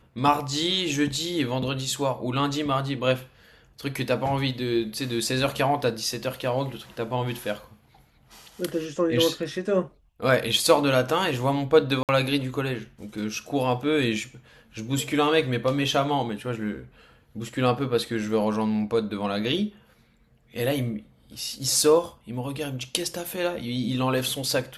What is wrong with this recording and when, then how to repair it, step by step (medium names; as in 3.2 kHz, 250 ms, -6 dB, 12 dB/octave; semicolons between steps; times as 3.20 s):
12.03–12.09 s: dropout 58 ms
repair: interpolate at 12.03 s, 58 ms